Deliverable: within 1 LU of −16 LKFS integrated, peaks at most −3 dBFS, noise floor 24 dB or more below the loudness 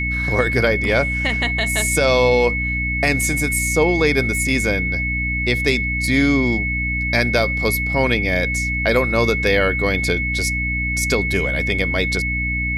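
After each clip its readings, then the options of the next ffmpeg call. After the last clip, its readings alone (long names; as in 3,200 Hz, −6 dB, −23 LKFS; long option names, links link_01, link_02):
mains hum 60 Hz; hum harmonics up to 300 Hz; level of the hum −22 dBFS; interfering tone 2,200 Hz; level of the tone −21 dBFS; integrated loudness −18.0 LKFS; sample peak −4.0 dBFS; target loudness −16.0 LKFS
→ -af "bandreject=frequency=60:width_type=h:width=4,bandreject=frequency=120:width_type=h:width=4,bandreject=frequency=180:width_type=h:width=4,bandreject=frequency=240:width_type=h:width=4,bandreject=frequency=300:width_type=h:width=4"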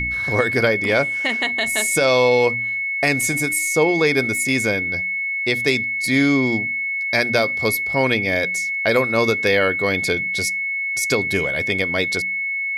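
mains hum none found; interfering tone 2,200 Hz; level of the tone −21 dBFS
→ -af "bandreject=frequency=2200:width=30"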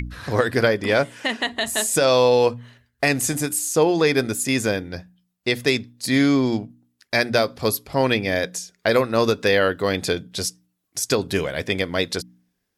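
interfering tone none found; integrated loudness −21.0 LKFS; sample peak −5.5 dBFS; target loudness −16.0 LKFS
→ -af "volume=5dB,alimiter=limit=-3dB:level=0:latency=1"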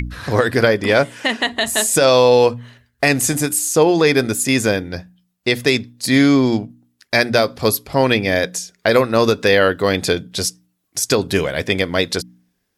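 integrated loudness −16.5 LKFS; sample peak −3.0 dBFS; background noise floor −70 dBFS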